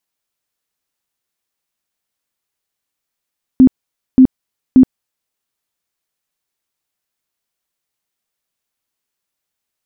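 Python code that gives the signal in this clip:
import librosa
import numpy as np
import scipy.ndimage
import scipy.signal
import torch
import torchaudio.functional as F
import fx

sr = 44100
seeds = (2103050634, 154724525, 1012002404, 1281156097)

y = fx.tone_burst(sr, hz=259.0, cycles=19, every_s=0.58, bursts=3, level_db=-2.0)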